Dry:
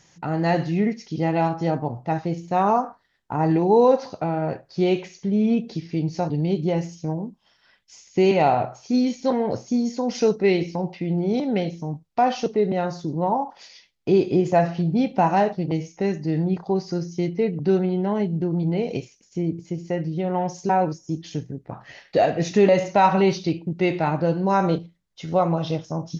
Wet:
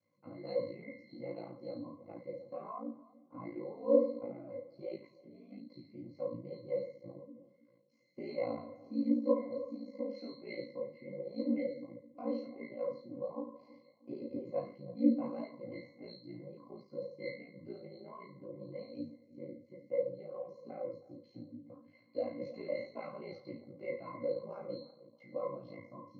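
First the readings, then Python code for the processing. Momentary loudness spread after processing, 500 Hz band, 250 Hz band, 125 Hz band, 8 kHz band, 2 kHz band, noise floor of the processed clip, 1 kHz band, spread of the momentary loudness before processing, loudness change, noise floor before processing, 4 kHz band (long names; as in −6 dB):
17 LU, −15.5 dB, −16.5 dB, −28.5 dB, can't be measured, −21.5 dB, −67 dBFS, −28.0 dB, 10 LU, −17.0 dB, −62 dBFS, −21.5 dB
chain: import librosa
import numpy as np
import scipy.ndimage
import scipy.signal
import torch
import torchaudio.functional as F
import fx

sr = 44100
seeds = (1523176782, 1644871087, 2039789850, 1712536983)

y = scipy.signal.sosfilt(scipy.signal.butter(4, 210.0, 'highpass', fs=sr, output='sos'), x)
y = fx.hum_notches(y, sr, base_hz=60, count=6)
y = fx.octave_resonator(y, sr, note='C', decay_s=0.49)
y = fx.echo_filtered(y, sr, ms=320, feedback_pct=41, hz=950.0, wet_db=-16.5)
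y = y * np.sin(2.0 * np.pi * 28.0 * np.arange(len(y)) / sr)
y = fx.detune_double(y, sr, cents=49)
y = y * librosa.db_to_amplitude(8.5)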